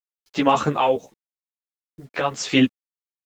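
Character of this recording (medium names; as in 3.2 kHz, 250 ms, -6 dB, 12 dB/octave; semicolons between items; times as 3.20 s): random-step tremolo 3.9 Hz, depth 65%; a quantiser's noise floor 10-bit, dither none; a shimmering, thickened sound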